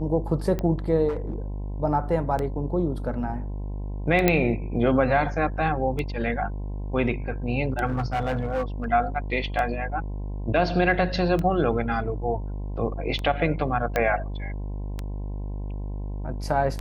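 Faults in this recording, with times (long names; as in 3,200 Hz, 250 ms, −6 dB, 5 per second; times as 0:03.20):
mains buzz 50 Hz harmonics 21 −31 dBFS
scratch tick 33 1/3 rpm −16 dBFS
0:01.08–0:01.42: clipping −24 dBFS
0:04.28: click −5 dBFS
0:07.86–0:08.84: clipping −21 dBFS
0:13.96: click −10 dBFS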